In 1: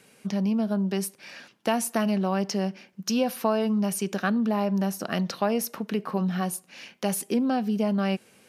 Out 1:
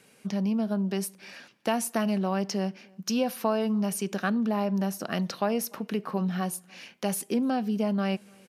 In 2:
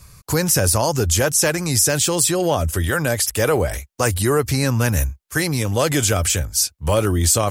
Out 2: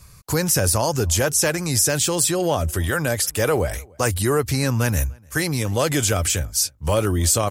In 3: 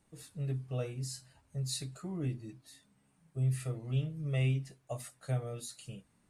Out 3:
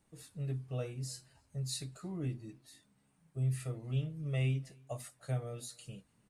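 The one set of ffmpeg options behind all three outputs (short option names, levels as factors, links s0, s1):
-filter_complex "[0:a]asplit=2[s0][s1];[s1]adelay=297.4,volume=0.0398,highshelf=f=4000:g=-6.69[s2];[s0][s2]amix=inputs=2:normalize=0,volume=0.794"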